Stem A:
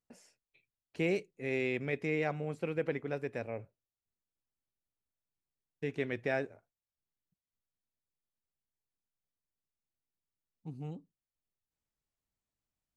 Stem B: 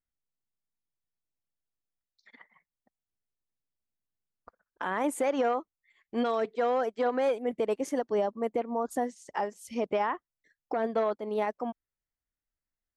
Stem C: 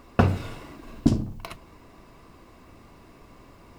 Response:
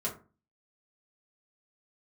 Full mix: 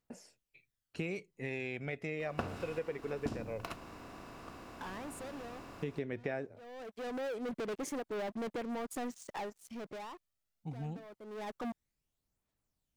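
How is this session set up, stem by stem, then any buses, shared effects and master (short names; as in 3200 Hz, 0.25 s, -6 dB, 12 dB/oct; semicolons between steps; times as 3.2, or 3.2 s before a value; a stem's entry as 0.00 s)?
+2.5 dB, 0.00 s, no send, phaser 0.16 Hz, delay 2.3 ms, feedback 43%
-15.5 dB, 0.00 s, no send, low shelf 200 Hz +7.5 dB; tremolo 1.3 Hz, depth 44%; sample leveller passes 5; auto duck -17 dB, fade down 1.45 s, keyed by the first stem
+1.0 dB, 2.20 s, no send, per-bin compression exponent 0.6; low shelf 360 Hz -9 dB; upward expander 1.5:1, over -39 dBFS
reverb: off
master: compressor 4:1, threshold -36 dBFS, peak gain reduction 17 dB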